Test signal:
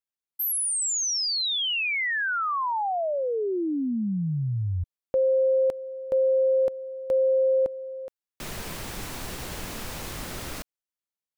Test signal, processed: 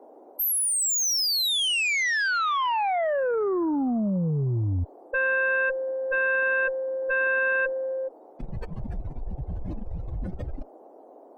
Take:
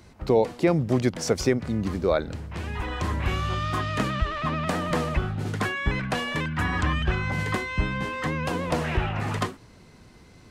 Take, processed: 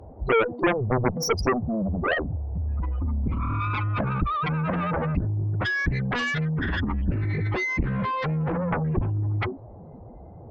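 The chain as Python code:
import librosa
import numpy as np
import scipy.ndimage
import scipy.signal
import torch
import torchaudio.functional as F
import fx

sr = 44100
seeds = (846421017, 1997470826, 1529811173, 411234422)

y = fx.spec_expand(x, sr, power=3.8)
y = fx.dmg_noise_band(y, sr, seeds[0], low_hz=280.0, high_hz=800.0, level_db=-57.0)
y = fx.cheby_harmonics(y, sr, harmonics=(2, 3, 6, 7), levels_db=(-19, -9, -34, -12), full_scale_db=-13.0)
y = y * 10.0 ** (2.0 / 20.0)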